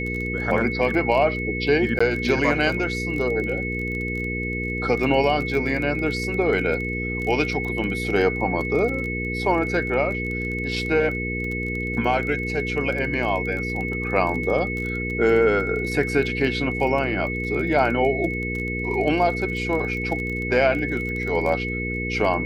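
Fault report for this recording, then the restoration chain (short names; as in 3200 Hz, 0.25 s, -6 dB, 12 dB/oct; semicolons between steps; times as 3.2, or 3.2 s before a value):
crackle 21/s -28 dBFS
hum 60 Hz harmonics 8 -29 dBFS
tone 2200 Hz -28 dBFS
1.99–2 gap 15 ms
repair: de-click; de-hum 60 Hz, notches 8; notch 2200 Hz, Q 30; interpolate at 1.99, 15 ms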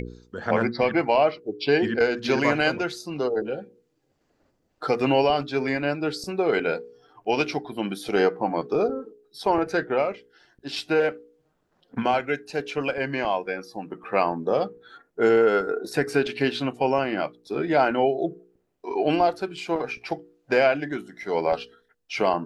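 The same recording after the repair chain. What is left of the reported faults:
none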